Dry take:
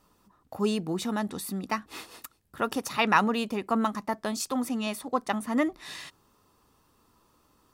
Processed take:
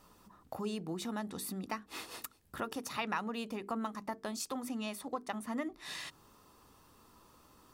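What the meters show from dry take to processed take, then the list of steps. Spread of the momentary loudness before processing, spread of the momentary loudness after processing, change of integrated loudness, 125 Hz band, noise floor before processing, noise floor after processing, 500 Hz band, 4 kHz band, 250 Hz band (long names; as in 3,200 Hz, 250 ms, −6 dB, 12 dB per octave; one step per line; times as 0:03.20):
18 LU, 7 LU, −11.0 dB, −9.0 dB, −66 dBFS, −64 dBFS, −10.5 dB, −8.0 dB, −10.0 dB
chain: downward compressor 2.5 to 1, threshold −45 dBFS, peak gain reduction 19 dB
mains-hum notches 50/100/150/200/250/300/350/400/450 Hz
level +3.5 dB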